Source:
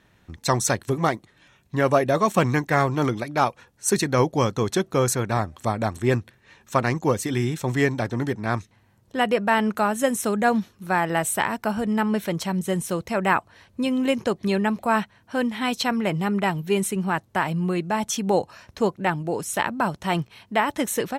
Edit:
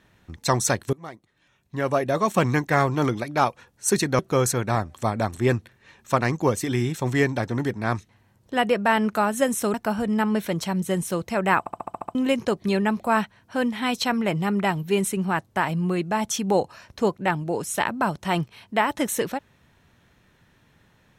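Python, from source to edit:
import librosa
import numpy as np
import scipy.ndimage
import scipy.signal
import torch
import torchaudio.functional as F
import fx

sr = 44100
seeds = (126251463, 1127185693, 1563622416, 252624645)

y = fx.edit(x, sr, fx.fade_in_from(start_s=0.93, length_s=1.63, floor_db=-23.5),
    fx.cut(start_s=4.19, length_s=0.62),
    fx.cut(start_s=10.36, length_s=1.17),
    fx.stutter_over(start_s=13.38, slice_s=0.07, count=8), tone=tone)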